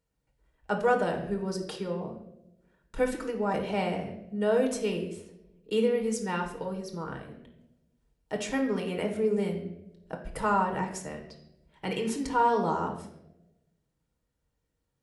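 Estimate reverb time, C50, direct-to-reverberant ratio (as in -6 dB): 0.90 s, 8.0 dB, 3.0 dB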